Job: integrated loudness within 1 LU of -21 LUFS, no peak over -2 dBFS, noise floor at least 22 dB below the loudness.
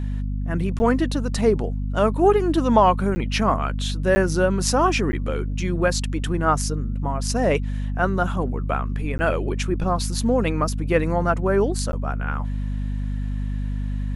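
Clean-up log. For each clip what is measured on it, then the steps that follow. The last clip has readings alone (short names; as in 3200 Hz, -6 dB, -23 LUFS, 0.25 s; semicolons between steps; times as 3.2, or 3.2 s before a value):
dropouts 6; longest dropout 10 ms; hum 50 Hz; harmonics up to 250 Hz; hum level -23 dBFS; loudness -22.5 LUFS; peak -4.0 dBFS; loudness target -21.0 LUFS
-> interpolate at 0.79/3.15/4.15/5.12/9.18/11.92, 10 ms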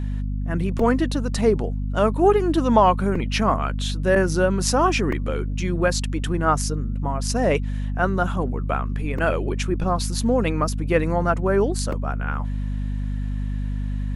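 dropouts 0; hum 50 Hz; harmonics up to 250 Hz; hum level -23 dBFS
-> de-hum 50 Hz, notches 5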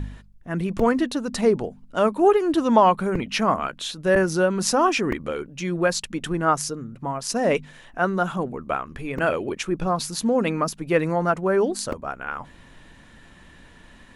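hum none; loudness -23.0 LUFS; peak -4.5 dBFS; loudness target -21.0 LUFS
-> gain +2 dB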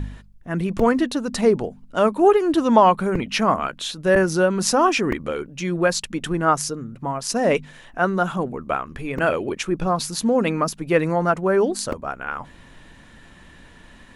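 loudness -21.0 LUFS; peak -2.5 dBFS; noise floor -47 dBFS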